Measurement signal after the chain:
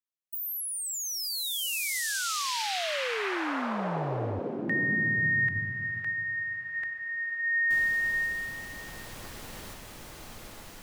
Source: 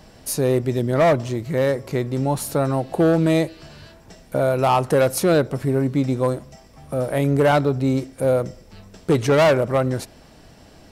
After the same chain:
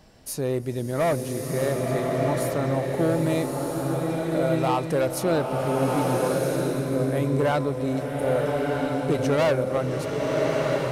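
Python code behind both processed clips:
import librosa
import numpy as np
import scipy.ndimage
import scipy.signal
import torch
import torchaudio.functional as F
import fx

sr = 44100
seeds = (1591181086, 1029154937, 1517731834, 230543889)

y = fx.rev_bloom(x, sr, seeds[0], attack_ms=1320, drr_db=-1.0)
y = y * librosa.db_to_amplitude(-7.0)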